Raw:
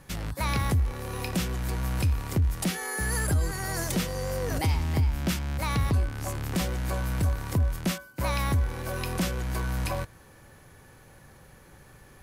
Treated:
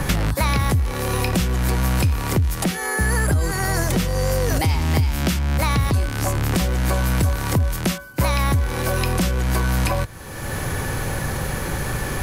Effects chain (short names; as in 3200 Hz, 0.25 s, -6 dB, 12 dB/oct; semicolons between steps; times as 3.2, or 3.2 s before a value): three-band squash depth 100%; gain +7.5 dB